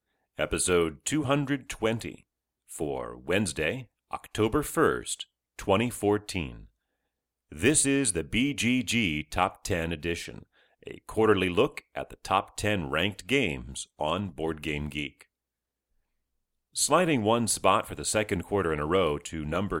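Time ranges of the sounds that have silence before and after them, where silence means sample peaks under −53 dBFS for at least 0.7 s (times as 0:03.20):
0:07.52–0:15.23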